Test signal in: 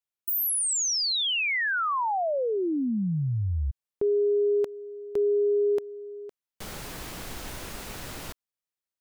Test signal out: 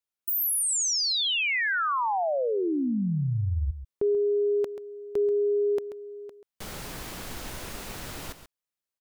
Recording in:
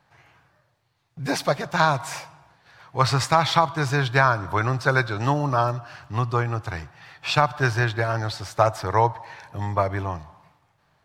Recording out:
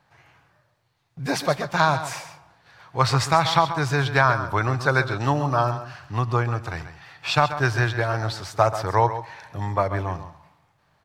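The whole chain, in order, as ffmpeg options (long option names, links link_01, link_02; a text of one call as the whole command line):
ffmpeg -i in.wav -af "aecho=1:1:135:0.266" out.wav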